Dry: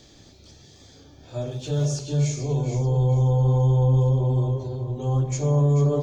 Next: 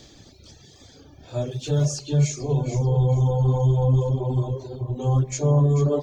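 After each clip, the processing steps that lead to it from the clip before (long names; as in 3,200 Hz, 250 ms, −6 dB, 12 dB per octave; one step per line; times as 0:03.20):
reverb reduction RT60 1.2 s
level +3.5 dB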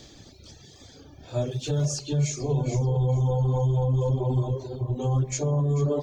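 brickwall limiter −17.5 dBFS, peak gain reduction 7.5 dB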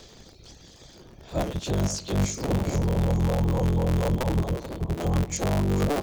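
sub-harmonics by changed cycles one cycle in 3, inverted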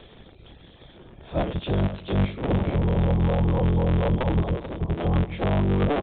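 downsampling to 8,000 Hz
level +2 dB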